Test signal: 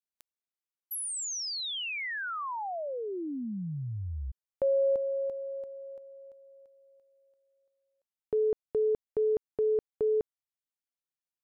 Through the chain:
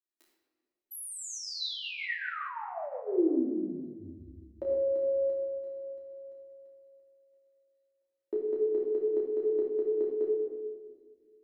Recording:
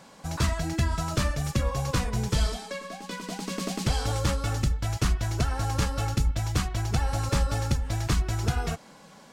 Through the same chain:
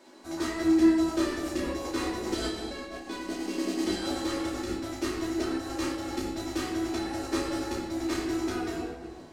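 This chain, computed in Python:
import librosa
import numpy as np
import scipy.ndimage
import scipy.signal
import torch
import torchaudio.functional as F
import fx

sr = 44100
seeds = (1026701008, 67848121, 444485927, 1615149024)

p1 = fx.low_shelf_res(x, sr, hz=200.0, db=-12.5, q=3.0)
p2 = fx.small_body(p1, sr, hz=(360.0, 1900.0, 4000.0), ring_ms=60, db=10)
p3 = p2 + fx.room_early_taps(p2, sr, ms=(12, 31), db=(-3.0, -4.5), dry=0)
p4 = fx.room_shoebox(p3, sr, seeds[0], volume_m3=1900.0, walls='mixed', distance_m=2.7)
p5 = fx.am_noise(p4, sr, seeds[1], hz=8.9, depth_pct=55)
y = p5 * librosa.db_to_amplitude(-8.0)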